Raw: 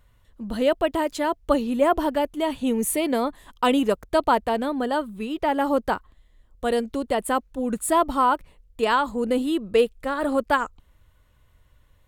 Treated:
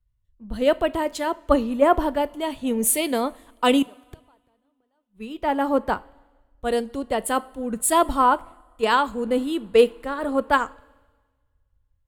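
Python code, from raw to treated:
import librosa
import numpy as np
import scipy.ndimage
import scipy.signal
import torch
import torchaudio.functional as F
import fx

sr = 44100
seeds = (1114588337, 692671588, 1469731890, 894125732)

y = fx.gate_flip(x, sr, shuts_db=-20.0, range_db=-28, at=(3.82, 5.21))
y = fx.rev_double_slope(y, sr, seeds[0], early_s=0.39, late_s=3.8, knee_db=-17, drr_db=15.0)
y = fx.band_widen(y, sr, depth_pct=70)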